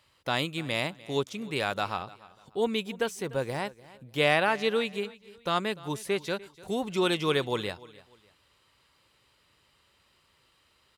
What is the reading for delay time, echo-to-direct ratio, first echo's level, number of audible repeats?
297 ms, -19.5 dB, -20.0 dB, 2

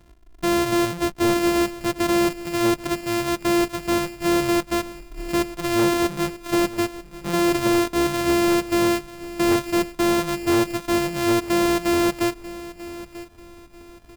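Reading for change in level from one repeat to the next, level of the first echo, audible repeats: -10.0 dB, -16.0 dB, 2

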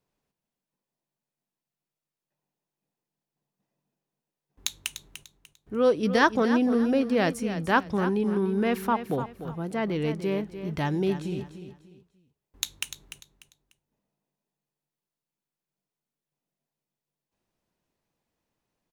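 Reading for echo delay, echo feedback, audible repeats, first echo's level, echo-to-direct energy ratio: 296 ms, 29%, 3, -11.0 dB, -10.5 dB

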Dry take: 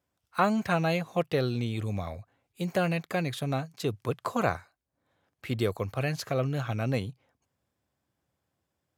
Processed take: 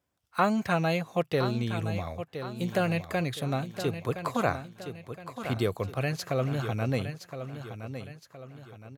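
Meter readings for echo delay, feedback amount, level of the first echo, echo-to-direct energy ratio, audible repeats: 1017 ms, 42%, -10.0 dB, -9.0 dB, 4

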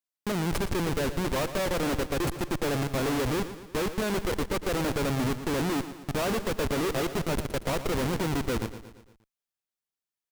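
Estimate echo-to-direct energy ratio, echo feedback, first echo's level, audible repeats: -10.5 dB, 52%, -12.0 dB, 5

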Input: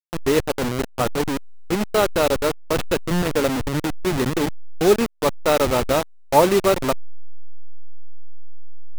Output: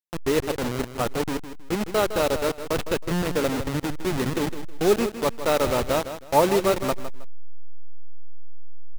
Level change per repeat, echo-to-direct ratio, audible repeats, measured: -11.5 dB, -10.5 dB, 2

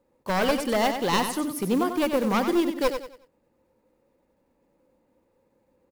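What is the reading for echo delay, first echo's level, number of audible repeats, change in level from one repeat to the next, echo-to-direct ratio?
93 ms, -8.0 dB, 3, -9.5 dB, -7.5 dB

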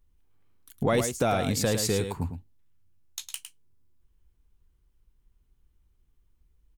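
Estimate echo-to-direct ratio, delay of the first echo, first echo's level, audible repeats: -8.0 dB, 107 ms, -8.0 dB, 1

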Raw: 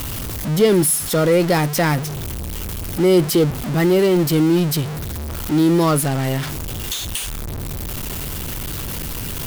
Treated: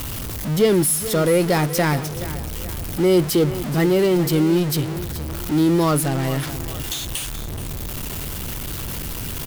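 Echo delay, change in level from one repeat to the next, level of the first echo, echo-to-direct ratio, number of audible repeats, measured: 426 ms, -7.5 dB, -14.0 dB, -13.0 dB, 3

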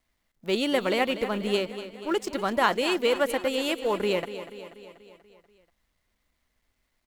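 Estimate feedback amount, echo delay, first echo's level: 58%, 242 ms, -12.5 dB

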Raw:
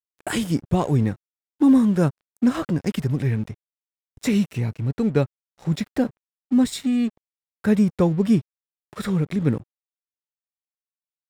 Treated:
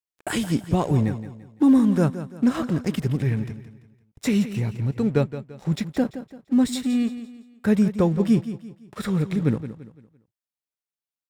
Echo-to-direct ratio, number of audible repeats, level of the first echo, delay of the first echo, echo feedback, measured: -12.0 dB, 3, -12.5 dB, 170 ms, 37%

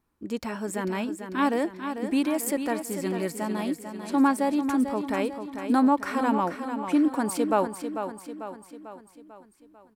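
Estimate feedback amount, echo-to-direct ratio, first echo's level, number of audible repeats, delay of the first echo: 52%, -7.0 dB, -8.5 dB, 5, 445 ms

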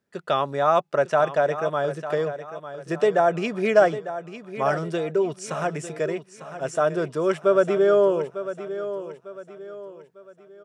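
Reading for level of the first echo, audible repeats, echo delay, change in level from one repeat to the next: -12.0 dB, 3, 900 ms, -8.5 dB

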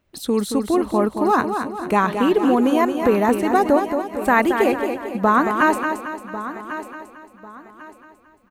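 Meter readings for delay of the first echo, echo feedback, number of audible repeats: 224 ms, no regular repeats, 10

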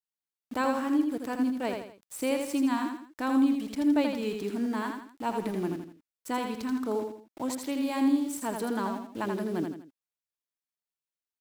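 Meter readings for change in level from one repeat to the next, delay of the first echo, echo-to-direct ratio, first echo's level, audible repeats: -8.5 dB, 82 ms, -4.5 dB, -5.0 dB, 3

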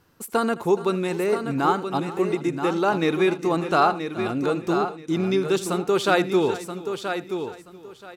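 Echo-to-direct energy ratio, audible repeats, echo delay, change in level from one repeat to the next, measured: -7.0 dB, 6, 79 ms, no regular repeats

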